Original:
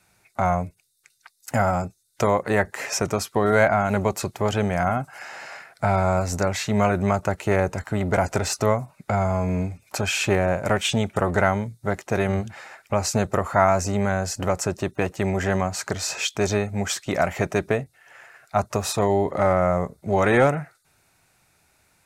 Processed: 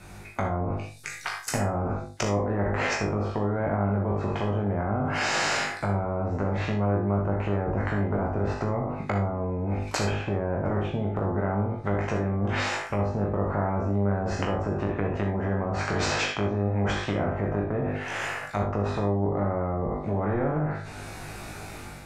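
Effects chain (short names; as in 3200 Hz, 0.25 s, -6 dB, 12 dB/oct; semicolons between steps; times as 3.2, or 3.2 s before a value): spectral trails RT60 0.33 s; treble ducked by the level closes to 480 Hz, closed at -19 dBFS; AGC gain up to 8 dB; dynamic EQ 7100 Hz, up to +4 dB, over -48 dBFS, Q 0.76; reverse; compressor 6:1, threshold -25 dBFS, peak gain reduction 14.5 dB; reverse; tilt -2.5 dB/oct; limiter -17 dBFS, peak gain reduction 6.5 dB; on a send: flutter echo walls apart 3.4 m, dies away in 0.26 s; on the sum: non-linear reverb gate 90 ms rising, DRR 6.5 dB; spectral compressor 2:1; gain -3.5 dB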